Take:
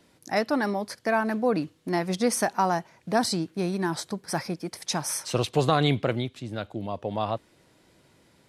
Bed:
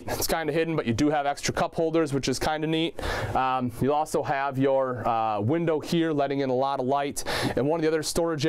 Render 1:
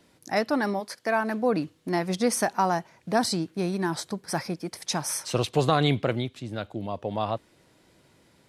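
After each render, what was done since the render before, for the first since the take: 0.79–1.41 HPF 530 Hz -> 140 Hz 6 dB/oct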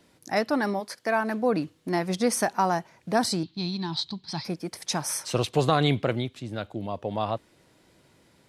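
3.43–4.45 EQ curve 160 Hz 0 dB, 340 Hz -7 dB, 500 Hz -20 dB, 890 Hz -3 dB, 1500 Hz -12 dB, 2300 Hz -5 dB, 4100 Hz +13 dB, 5800 Hz -6 dB, 13000 Hz -29 dB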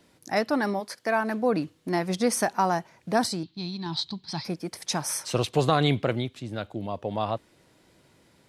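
3.27–3.86 gain -3.5 dB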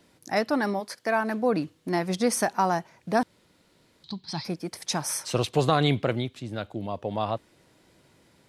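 3.23–4.04 room tone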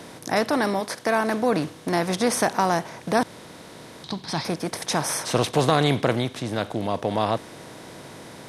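per-bin compression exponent 0.6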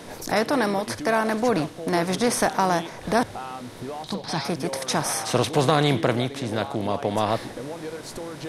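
add bed -10.5 dB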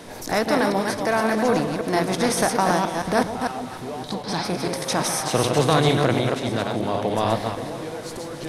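reverse delay 0.151 s, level -3.5 dB; echo with dull and thin repeats by turns 0.141 s, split 960 Hz, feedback 73%, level -11 dB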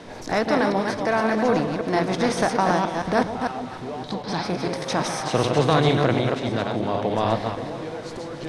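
air absorption 87 m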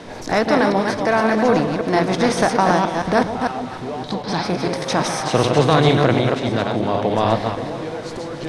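gain +4.5 dB; limiter -1 dBFS, peak gain reduction 1.5 dB

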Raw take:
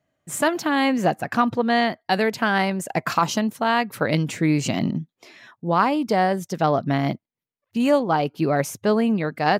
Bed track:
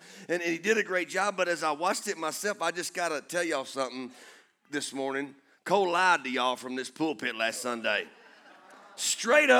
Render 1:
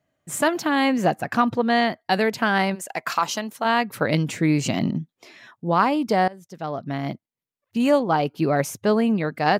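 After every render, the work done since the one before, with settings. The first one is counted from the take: 2.74–3.64 HPF 1200 Hz -> 490 Hz 6 dB/oct; 6.28–7.78 fade in, from -21 dB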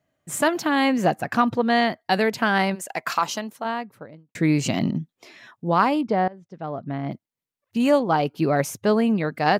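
3.13–4.35 studio fade out; 6.01–7.12 tape spacing loss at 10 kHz 28 dB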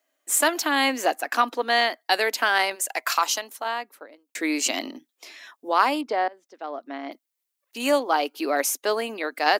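elliptic high-pass 270 Hz, stop band 50 dB; tilt +3 dB/oct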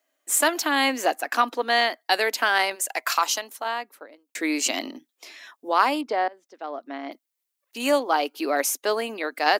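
nothing audible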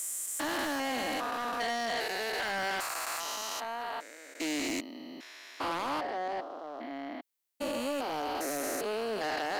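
stepped spectrum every 0.4 s; soft clip -28.5 dBFS, distortion -9 dB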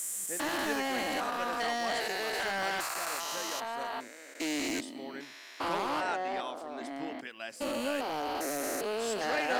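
add bed track -12.5 dB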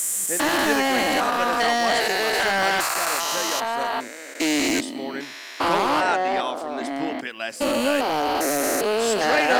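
gain +11.5 dB

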